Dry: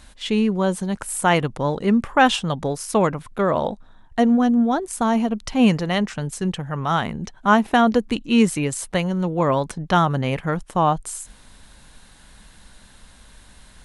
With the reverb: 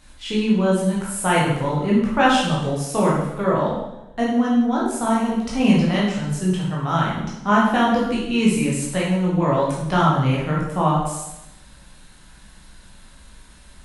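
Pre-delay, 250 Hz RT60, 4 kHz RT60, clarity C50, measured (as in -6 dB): 12 ms, 0.95 s, 0.80 s, 1.5 dB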